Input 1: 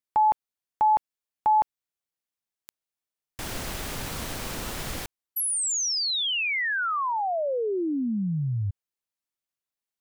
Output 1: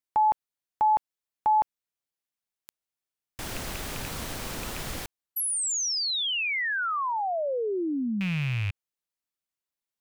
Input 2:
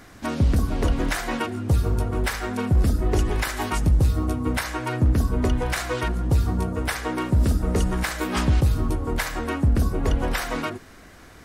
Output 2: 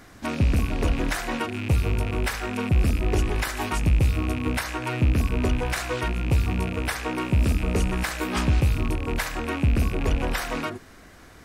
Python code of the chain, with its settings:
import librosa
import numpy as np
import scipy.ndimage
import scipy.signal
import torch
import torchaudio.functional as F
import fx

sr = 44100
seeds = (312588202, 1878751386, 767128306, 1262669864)

y = fx.rattle_buzz(x, sr, strikes_db=-31.0, level_db=-22.0)
y = y * librosa.db_to_amplitude(-1.5)